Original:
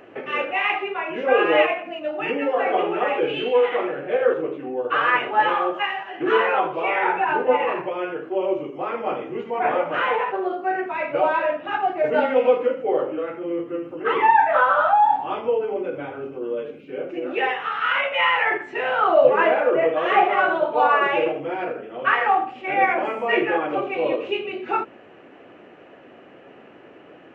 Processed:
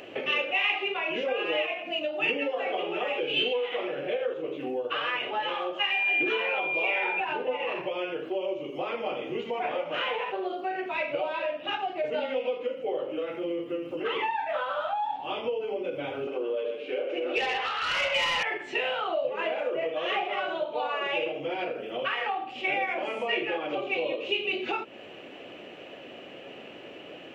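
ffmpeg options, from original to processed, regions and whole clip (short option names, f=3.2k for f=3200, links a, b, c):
-filter_complex "[0:a]asettb=1/sr,asplit=3[a][b][c];[a]atrim=end=5.914[d];[b]atrim=start=5.91:end=7.2,asetpts=PTS-STARTPTS,afade=t=in:d=0.004:c=qsin,afade=t=out:st=1.286:d=0.004:c=qsin,bandreject=f=1.2k:w=9.2,aeval=exprs='val(0)+0.0501*sin(2*PI*2400*n/s)':c=same,highpass=140[e];[c]atrim=start=7.196[f];[d][e]acrossfade=d=0.004:c1=hsin:c2=qsin[g];[g][f]acrossfade=d=0.004:c1=qsin:c2=hsin,asettb=1/sr,asplit=3[h][i][j];[h]atrim=end=16.274[k];[i]atrim=start=16.27:end=18.43,asetpts=PTS-STARTPTS,afade=t=in:d=0.004:c=qsin,afade=t=out:st=2.156:d=0.004:c=qsin,highpass=310,aecho=1:1:125:0.422,atrim=end_sample=95256,asplit=2[l][m];[m]highpass=f=720:p=1,volume=16dB,asoftclip=type=tanh:threshold=-7dB[n];[l][n]amix=inputs=2:normalize=0,lowpass=f=1.3k:p=1,volume=-6dB[o];[j]atrim=start=18.426[p];[k][o]acrossfade=d=0.004:c1=hsin:c2=qsin[q];[q][p]acrossfade=d=0.004:c1=qsin:c2=hsin,equalizer=f=570:t=o:w=0.46:g=4.5,acompressor=threshold=-29dB:ratio=4,highshelf=f=2.2k:t=q:w=1.5:g=10"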